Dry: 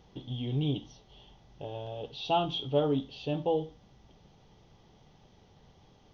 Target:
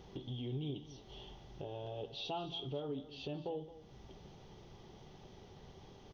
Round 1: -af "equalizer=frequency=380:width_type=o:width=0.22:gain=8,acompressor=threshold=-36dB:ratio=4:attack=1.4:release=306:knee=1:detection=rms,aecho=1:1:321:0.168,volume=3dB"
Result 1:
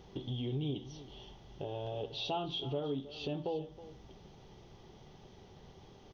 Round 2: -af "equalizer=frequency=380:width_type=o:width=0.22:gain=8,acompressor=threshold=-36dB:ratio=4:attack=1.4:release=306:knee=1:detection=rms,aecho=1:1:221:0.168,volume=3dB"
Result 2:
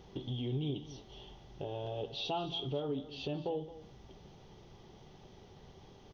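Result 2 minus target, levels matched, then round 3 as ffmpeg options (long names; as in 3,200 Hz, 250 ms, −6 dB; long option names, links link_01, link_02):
downward compressor: peak gain reduction −4.5 dB
-af "equalizer=frequency=380:width_type=o:width=0.22:gain=8,acompressor=threshold=-42dB:ratio=4:attack=1.4:release=306:knee=1:detection=rms,aecho=1:1:221:0.168,volume=3dB"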